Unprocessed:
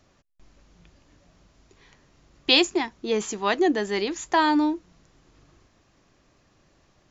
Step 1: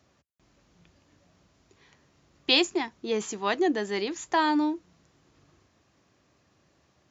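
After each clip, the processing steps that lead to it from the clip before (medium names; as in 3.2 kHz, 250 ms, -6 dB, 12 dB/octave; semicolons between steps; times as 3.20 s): high-pass 64 Hz 24 dB/octave; trim -3.5 dB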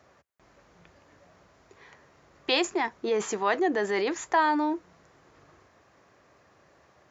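high-order bell 930 Hz +8.5 dB 2.7 oct; in parallel at -2 dB: compressor with a negative ratio -27 dBFS, ratio -1; on the sum: trim -7.5 dB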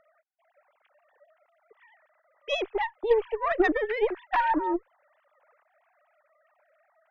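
formants replaced by sine waves; Chebyshev shaper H 4 -18 dB, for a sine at -12 dBFS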